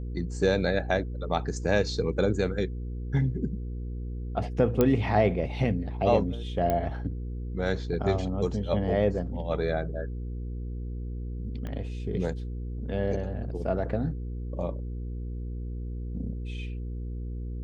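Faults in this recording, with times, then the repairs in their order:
hum 60 Hz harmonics 8 -34 dBFS
4.81 s: pop -10 dBFS
6.70 s: pop -15 dBFS
11.67 s: pop -24 dBFS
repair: de-click; de-hum 60 Hz, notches 8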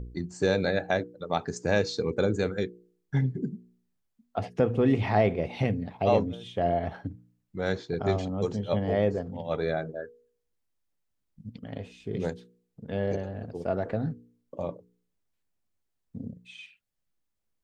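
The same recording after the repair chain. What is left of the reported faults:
11.67 s: pop

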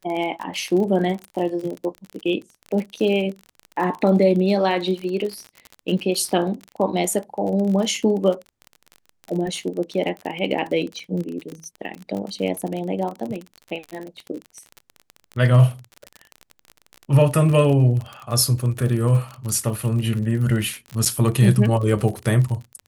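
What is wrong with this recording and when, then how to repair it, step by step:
crackle 39 per s -27 dBFS
21.05–21.06 s: dropout 7 ms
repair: de-click; interpolate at 21.05 s, 7 ms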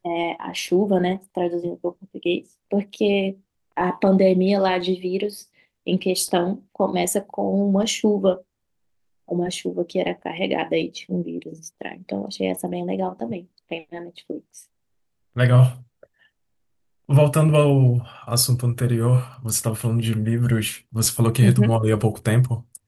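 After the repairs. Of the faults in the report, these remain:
nothing left

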